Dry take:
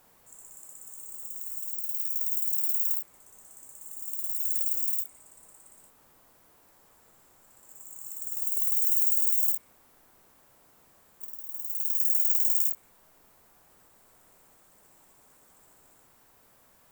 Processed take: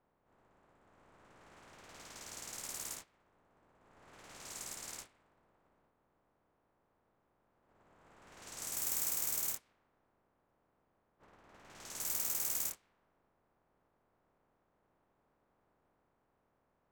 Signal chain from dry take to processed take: spectral contrast reduction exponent 0.41; level-controlled noise filter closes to 990 Hz, open at -21 dBFS; trim -7.5 dB

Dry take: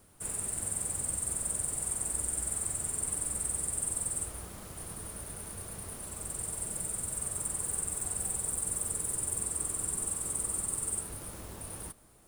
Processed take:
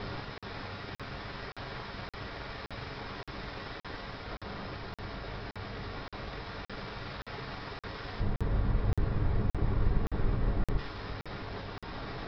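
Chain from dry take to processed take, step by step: one-bit comparator; rippled Chebyshev low-pass 5.3 kHz, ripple 3 dB; treble shelf 4.1 kHz -9 dB; gain riding 0.5 s; 8.20–10.78 s: tilt EQ -4.5 dB/octave; reverberation, pre-delay 3 ms, DRR 0.5 dB; crackling interface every 0.57 s, samples 2048, zero, from 0.38 s; trim +2 dB

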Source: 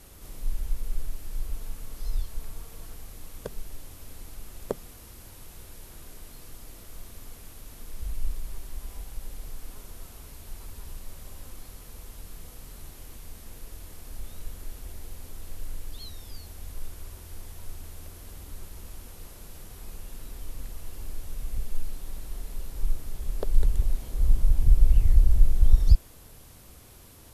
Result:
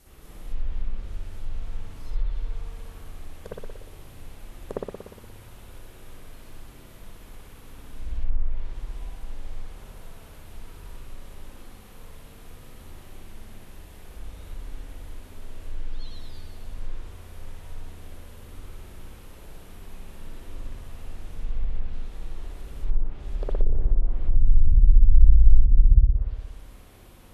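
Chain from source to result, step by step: spring tank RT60 1.2 s, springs 59 ms, chirp 45 ms, DRR -8 dB; low-pass that closes with the level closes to 300 Hz, closed at -4 dBFS; trim -6.5 dB

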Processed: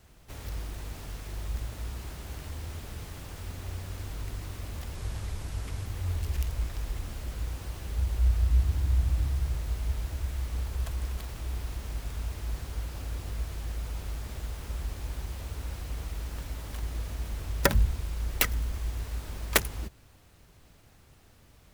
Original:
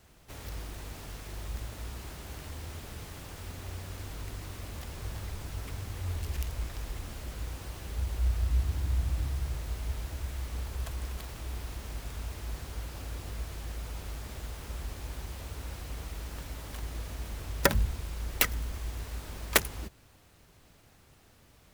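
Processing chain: 4.95–5.86 s: CVSD coder 64 kbps; bass shelf 110 Hz +5.5 dB

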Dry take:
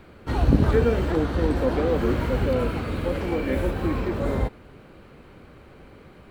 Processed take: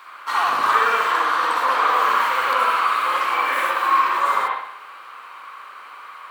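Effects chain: resonant high-pass 1.1 kHz, resonance Q 7.5; treble shelf 2.2 kHz +11.5 dB; reverberation, pre-delay 60 ms, DRR -3 dB

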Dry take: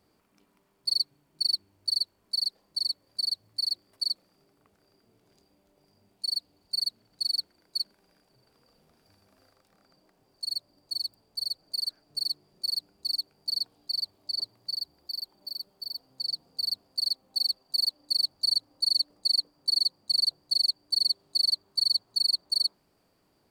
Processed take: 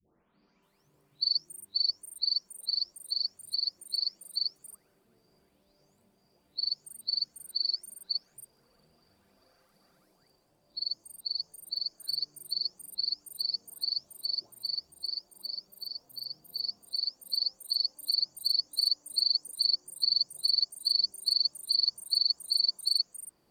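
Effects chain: delay that grows with frequency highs late, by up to 627 ms

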